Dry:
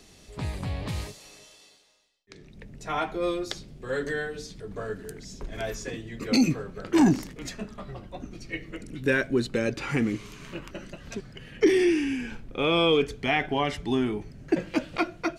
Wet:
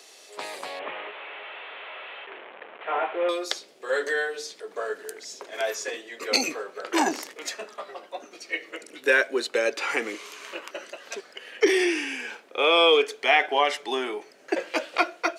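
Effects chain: 0.79–3.29 s: one-bit delta coder 16 kbps, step -37.5 dBFS; high-pass 450 Hz 24 dB/octave; trim +6 dB

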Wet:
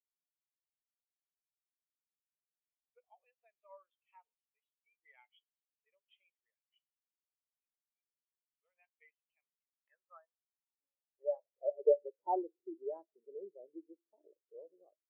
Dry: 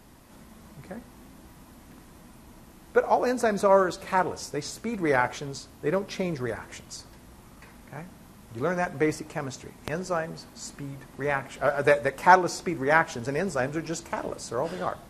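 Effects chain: band-pass sweep 2.8 kHz -> 360 Hz, 9.23–11.93 s; cabinet simulation 210–3600 Hz, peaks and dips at 260 Hz -8 dB, 360 Hz -4 dB, 1.5 kHz -9 dB, 3.1 kHz +10 dB; spectral contrast expander 2.5:1

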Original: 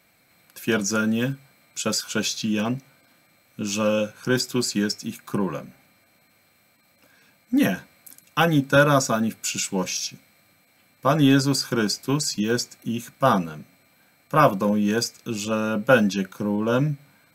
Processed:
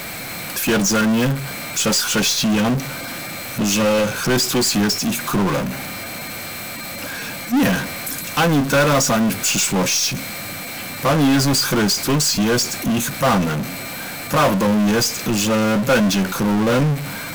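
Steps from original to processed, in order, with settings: partial rectifier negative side -3 dB; power-law waveshaper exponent 0.35; trim -4.5 dB

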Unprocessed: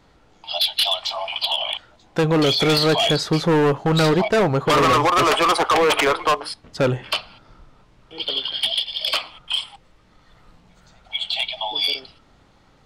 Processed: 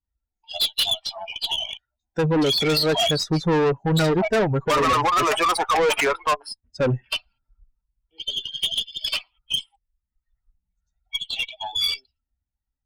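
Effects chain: expander on every frequency bin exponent 2; Chebyshev shaper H 5 -16 dB, 6 -21 dB, 8 -19 dB, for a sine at -12 dBFS

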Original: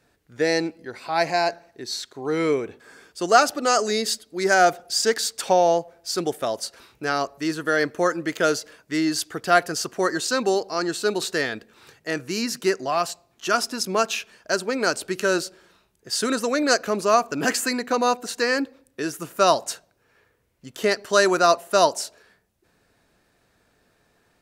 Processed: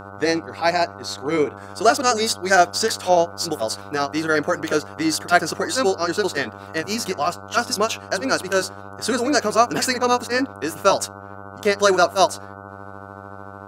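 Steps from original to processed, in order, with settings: mains buzz 100 Hz, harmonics 15, -40 dBFS -1 dB/octave; granular stretch 0.56×, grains 149 ms; trim +3.5 dB

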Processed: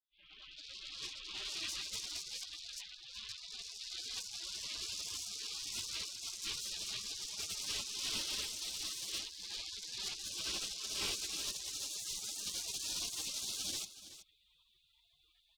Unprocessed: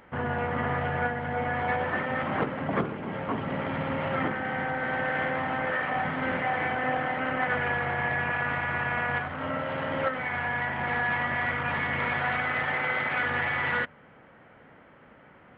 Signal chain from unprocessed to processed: fade-in on the opening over 1.67 s; overdrive pedal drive 23 dB, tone 3.3 kHz, clips at -14 dBFS; spectral gate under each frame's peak -30 dB weak; on a send: delay 375 ms -14 dB; on the sum: trim +1.5 dB

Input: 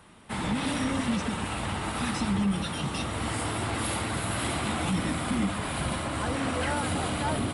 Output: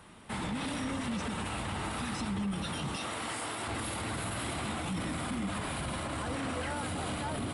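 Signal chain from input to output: 2.96–3.68 s: high-pass 460 Hz 6 dB/octave; peak limiter -27.5 dBFS, peak gain reduction 9.5 dB

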